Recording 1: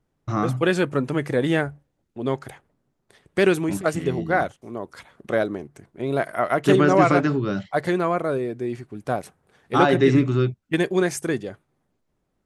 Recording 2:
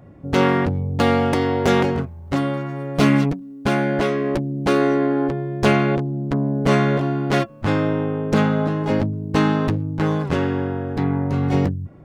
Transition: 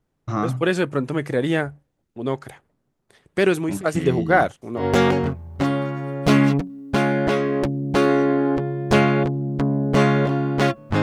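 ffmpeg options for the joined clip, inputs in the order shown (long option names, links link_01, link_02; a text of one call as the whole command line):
ffmpeg -i cue0.wav -i cue1.wav -filter_complex "[0:a]asettb=1/sr,asplit=3[link_01][link_02][link_03];[link_01]atrim=end=3.954[link_04];[link_02]atrim=start=3.95:end=4.85,asetpts=PTS-STARTPTS,afade=type=in:duration=0.004:curve=qsin,afade=type=out:start_time=0.896:duration=0.004:curve=qsin,acontrast=28[link_05];[link_03]atrim=start=4.846[link_06];[link_04][link_05]acrossfade=duration=0.004:curve1=hsin:curve2=qsin[link_07];[link_07][link_06]acrossfade=duration=0.004:curve1=qsin:curve2=hsin,apad=whole_dur=11.02,atrim=end=11.02,atrim=end=4.85,asetpts=PTS-STARTPTS[link_08];[1:a]atrim=start=1.47:end=7.74,asetpts=PTS-STARTPTS[link_09];[link_08][link_09]acrossfade=duration=0.1:curve1=tri:curve2=tri" out.wav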